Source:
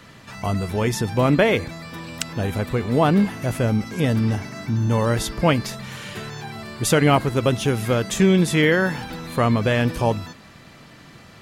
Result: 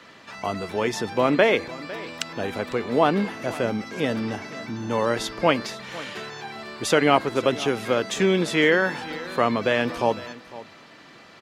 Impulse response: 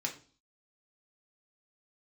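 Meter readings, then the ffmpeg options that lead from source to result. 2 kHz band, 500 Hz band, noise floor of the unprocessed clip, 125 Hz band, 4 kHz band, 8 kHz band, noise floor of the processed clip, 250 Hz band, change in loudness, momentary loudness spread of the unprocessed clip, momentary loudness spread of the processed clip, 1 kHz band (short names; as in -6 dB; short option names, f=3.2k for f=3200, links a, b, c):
0.0 dB, -0.5 dB, -46 dBFS, -12.5 dB, -0.5 dB, -5.5 dB, -48 dBFS, -5.0 dB, -3.0 dB, 16 LU, 15 LU, 0.0 dB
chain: -filter_complex "[0:a]acrossover=split=240 6400:gain=0.141 1 0.251[a][b][c];[a][b][c]amix=inputs=3:normalize=0,aecho=1:1:504:0.133"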